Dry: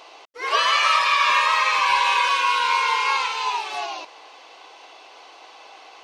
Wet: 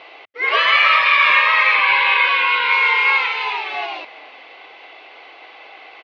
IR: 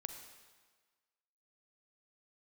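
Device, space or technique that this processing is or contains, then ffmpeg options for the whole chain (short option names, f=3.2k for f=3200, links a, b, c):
frequency-shifting delay pedal into a guitar cabinet: -filter_complex "[0:a]asplit=3[a][b][c];[b]adelay=368,afreqshift=-72,volume=-22dB[d];[c]adelay=736,afreqshift=-144,volume=-32.5dB[e];[a][d][e]amix=inputs=3:normalize=0,highpass=84,equalizer=f=95:t=q:w=4:g=7,equalizer=f=990:t=q:w=4:g=-6,equalizer=f=2.1k:t=q:w=4:g=9,lowpass=f=3.6k:w=0.5412,lowpass=f=3.6k:w=1.3066,asettb=1/sr,asplit=3[f][g][h];[f]atrim=end=1.744[i];[g]atrim=start=1.74:end=2.72,asetpts=PTS-STARTPTS,afade=t=in:d=0.004:c=qsin,afade=t=out:st=0.976:d=0.004:c=qsin,lowpass=f=5k:w=0.5412,lowpass=f=5k:w=1.3066[j];[h]atrim=start=2.716[k];[i][j]acrossfade=d=0.004:c1=hsin:c2=qsin[l];[l][k]acrossfade=d=0.004:c1=qsin:c2=hsin,volume=4dB"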